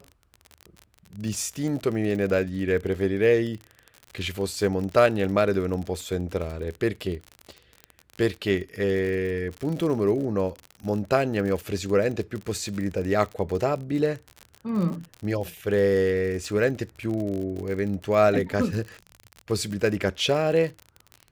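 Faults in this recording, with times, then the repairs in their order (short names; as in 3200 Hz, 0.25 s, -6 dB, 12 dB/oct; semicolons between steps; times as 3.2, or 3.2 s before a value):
crackle 45/s -30 dBFS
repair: de-click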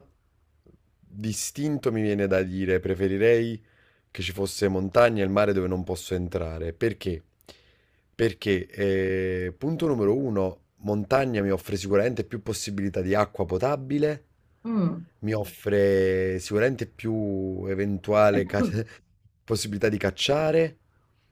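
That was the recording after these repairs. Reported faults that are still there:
none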